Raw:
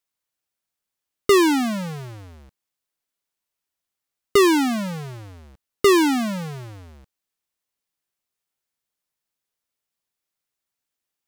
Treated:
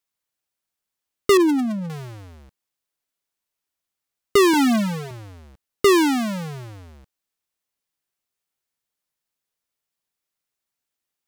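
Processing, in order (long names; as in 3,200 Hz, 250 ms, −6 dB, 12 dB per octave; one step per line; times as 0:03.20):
0:01.37–0:01.90: spectral envelope exaggerated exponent 2
0:04.53–0:05.11: comb filter 4.5 ms, depth 94%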